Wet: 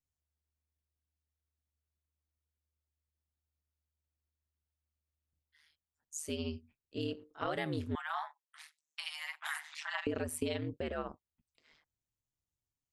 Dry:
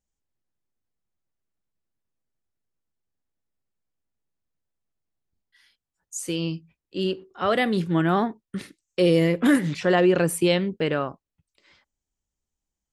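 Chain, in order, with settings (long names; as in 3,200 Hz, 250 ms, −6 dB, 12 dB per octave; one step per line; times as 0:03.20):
0:07.95–0:10.07: Butterworth high-pass 780 Hz 96 dB per octave
downward compressor 6 to 1, threshold −23 dBFS, peak gain reduction 8.5 dB
ring modulation 76 Hz
level −6.5 dB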